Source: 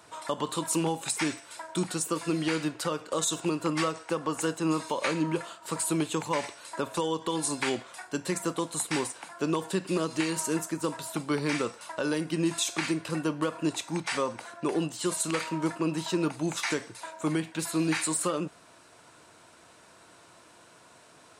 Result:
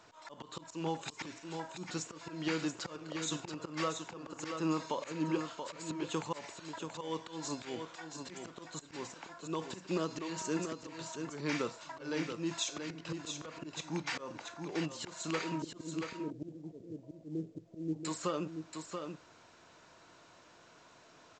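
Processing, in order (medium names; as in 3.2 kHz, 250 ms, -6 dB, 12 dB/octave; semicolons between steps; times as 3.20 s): 15.62–18.05 s: steep low-pass 530 Hz 36 dB/octave; slow attack 196 ms; delay 681 ms -6.5 dB; trim -5.5 dB; µ-law 128 kbps 16 kHz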